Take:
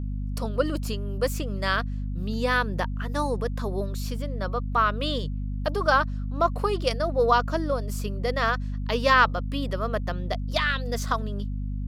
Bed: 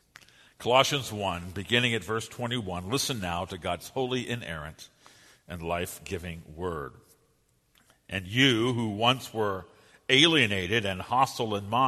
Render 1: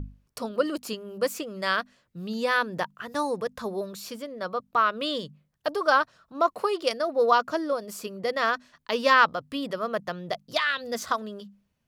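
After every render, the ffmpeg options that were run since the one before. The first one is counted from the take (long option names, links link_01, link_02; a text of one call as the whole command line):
ffmpeg -i in.wav -af "bandreject=frequency=50:width_type=h:width=6,bandreject=frequency=100:width_type=h:width=6,bandreject=frequency=150:width_type=h:width=6,bandreject=frequency=200:width_type=h:width=6,bandreject=frequency=250:width_type=h:width=6" out.wav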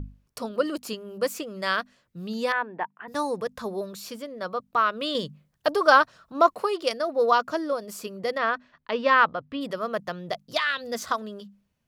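ffmpeg -i in.wav -filter_complex "[0:a]asettb=1/sr,asplit=3[link_01][link_02][link_03];[link_01]atrim=end=2.524[link_04];[link_02]atrim=start=2.52:end=3.08,asetpts=PTS-STARTPTS,afade=type=in:duration=0.004:curve=qsin,afade=type=out:start_time=0.556:duration=0.004:curve=qsin,highpass=310,equalizer=frequency=540:width_type=q:width=4:gain=-9,equalizer=frequency=850:width_type=q:width=4:gain=6,equalizer=frequency=1300:width_type=q:width=4:gain=-8,lowpass=frequency=2200:width=0.5412,lowpass=frequency=2200:width=1.3066[link_05];[link_03]atrim=start=3.076[link_06];[link_04][link_05]acrossfade=duration=0.004:curve1=hsin:curve2=qsin[link_07];[link_07][link_06]acrossfade=duration=0.004:curve1=qsin:curve2=hsin,asplit=3[link_08][link_09][link_10];[link_08]afade=type=out:start_time=8.37:duration=0.02[link_11];[link_09]lowpass=2800,afade=type=in:start_time=8.37:duration=0.02,afade=type=out:start_time=9.6:duration=0.02[link_12];[link_10]afade=type=in:start_time=9.6:duration=0.02[link_13];[link_11][link_12][link_13]amix=inputs=3:normalize=0,asplit=3[link_14][link_15][link_16];[link_14]atrim=end=5.152[link_17];[link_15]atrim=start=5.148:end=6.552,asetpts=PTS-STARTPTS,volume=4.5dB[link_18];[link_16]atrim=start=6.548[link_19];[link_17][link_18]acrossfade=duration=0.004:curve1=hsin:curve2=hsin[link_20];[link_20][link_19]acrossfade=duration=0.004:curve1=hsin:curve2=hsin" out.wav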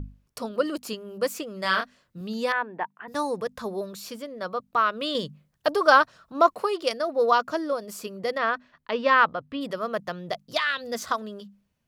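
ffmpeg -i in.wav -filter_complex "[0:a]asettb=1/sr,asplit=3[link_01][link_02][link_03];[link_01]atrim=end=1.624[link_04];[link_02]atrim=start=1.62:end=2.21,asetpts=PTS-STARTPTS,afade=type=in:duration=0.004:curve=qsin,afade=type=out:start_time=0.586:duration=0.004:curve=qsin,asplit=2[link_05][link_06];[link_06]adelay=27,volume=-4dB[link_07];[link_05][link_07]amix=inputs=2:normalize=0,atrim=end_sample=26019[link_08];[link_03]atrim=start=2.206[link_09];[link_04][link_08]acrossfade=duration=0.004:curve1=hsin:curve2=qsin[link_10];[link_10][link_09]acrossfade=duration=0.004:curve1=qsin:curve2=hsin" out.wav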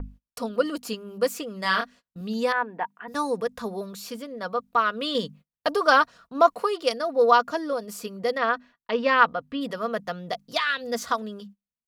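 ffmpeg -i in.wav -af "agate=range=-27dB:threshold=-47dB:ratio=16:detection=peak,aecho=1:1:4.2:0.44" out.wav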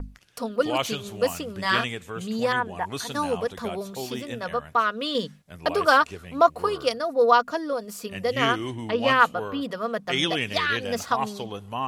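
ffmpeg -i in.wav -i bed.wav -filter_complex "[1:a]volume=-5dB[link_01];[0:a][link_01]amix=inputs=2:normalize=0" out.wav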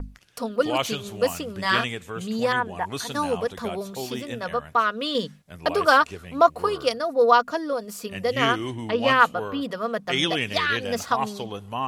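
ffmpeg -i in.wav -af "volume=1dB" out.wav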